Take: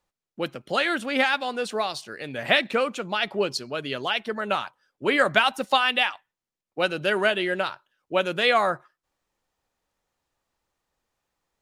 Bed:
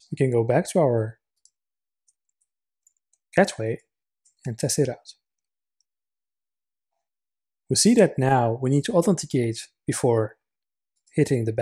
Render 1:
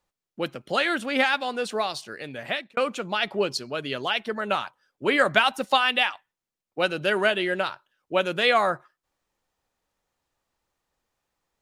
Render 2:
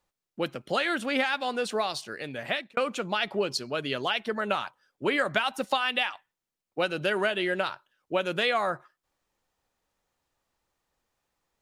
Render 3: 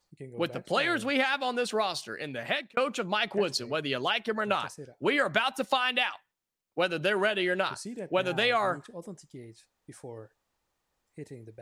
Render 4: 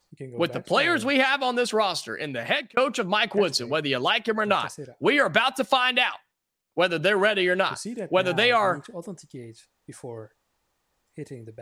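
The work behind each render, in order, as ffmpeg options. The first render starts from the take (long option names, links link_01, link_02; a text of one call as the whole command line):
ffmpeg -i in.wav -filter_complex "[0:a]asplit=2[link_01][link_02];[link_01]atrim=end=2.77,asetpts=PTS-STARTPTS,afade=type=out:start_time=2.14:duration=0.63[link_03];[link_02]atrim=start=2.77,asetpts=PTS-STARTPTS,afade=type=in:duration=0.004:curve=hsin[link_04];[link_03][link_04]concat=n=2:v=0:a=1" out.wav
ffmpeg -i in.wav -af "acompressor=threshold=-23dB:ratio=4" out.wav
ffmpeg -i in.wav -i bed.wav -filter_complex "[1:a]volume=-22.5dB[link_01];[0:a][link_01]amix=inputs=2:normalize=0" out.wav
ffmpeg -i in.wav -af "volume=5.5dB" out.wav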